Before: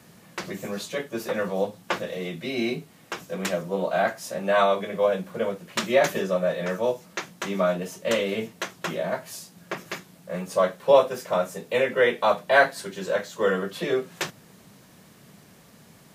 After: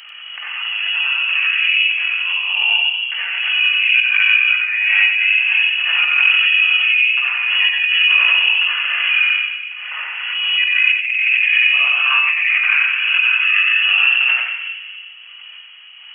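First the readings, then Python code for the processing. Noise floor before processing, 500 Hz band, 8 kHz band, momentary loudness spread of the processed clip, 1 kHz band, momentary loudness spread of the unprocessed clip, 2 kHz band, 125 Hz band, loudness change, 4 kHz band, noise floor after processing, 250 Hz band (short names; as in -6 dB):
-53 dBFS, under -25 dB, under -25 dB, 10 LU, -2.5 dB, 15 LU, +18.5 dB, under -40 dB, +13.0 dB, +21.0 dB, -38 dBFS, under -35 dB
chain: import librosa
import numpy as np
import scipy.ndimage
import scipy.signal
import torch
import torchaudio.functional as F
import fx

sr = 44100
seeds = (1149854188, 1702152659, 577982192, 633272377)

p1 = fx.freq_compress(x, sr, knee_hz=2400.0, ratio=1.5)
p2 = fx.step_gate(p1, sr, bpm=158, pattern='xxxx.x.x', floor_db=-12.0, edge_ms=4.5)
p3 = fx.rev_freeverb(p2, sr, rt60_s=1.7, hf_ratio=0.3, predelay_ms=30, drr_db=-9.5)
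p4 = fx.vibrato(p3, sr, rate_hz=0.87, depth_cents=19.0)
p5 = fx.freq_invert(p4, sr, carrier_hz=3100)
p6 = fx.over_compress(p5, sr, threshold_db=-15.0, ratio=-0.5)
p7 = scipy.signal.sosfilt(scipy.signal.butter(2, 1500.0, 'highpass', fs=sr, output='sos'), p6)
p8 = p7 + fx.echo_single(p7, sr, ms=92, db=-4.0, dry=0)
y = fx.pre_swell(p8, sr, db_per_s=26.0)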